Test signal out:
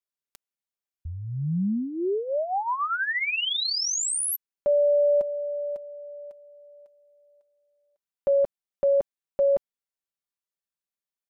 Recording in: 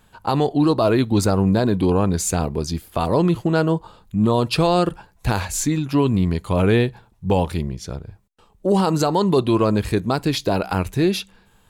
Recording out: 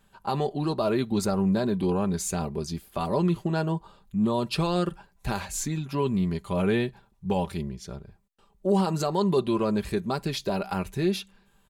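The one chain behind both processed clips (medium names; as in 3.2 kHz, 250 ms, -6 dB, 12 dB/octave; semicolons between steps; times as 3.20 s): comb 5.1 ms, depth 54%; trim -8.5 dB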